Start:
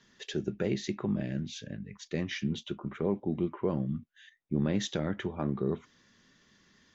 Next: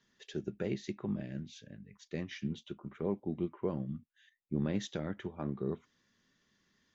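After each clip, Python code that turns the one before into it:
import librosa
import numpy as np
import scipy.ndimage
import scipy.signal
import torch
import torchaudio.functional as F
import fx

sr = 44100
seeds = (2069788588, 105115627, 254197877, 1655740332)

y = fx.upward_expand(x, sr, threshold_db=-39.0, expansion=1.5)
y = F.gain(torch.from_numpy(y), -3.5).numpy()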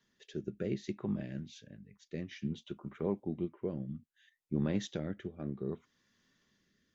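y = fx.rotary(x, sr, hz=0.6)
y = F.gain(torch.from_numpy(y), 1.0).numpy()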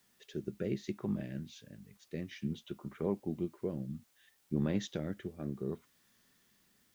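y = fx.quant_dither(x, sr, seeds[0], bits=12, dither='triangular')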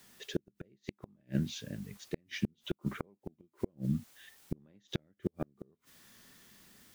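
y = fx.gate_flip(x, sr, shuts_db=-29.0, range_db=-40)
y = F.gain(torch.from_numpy(y), 10.5).numpy()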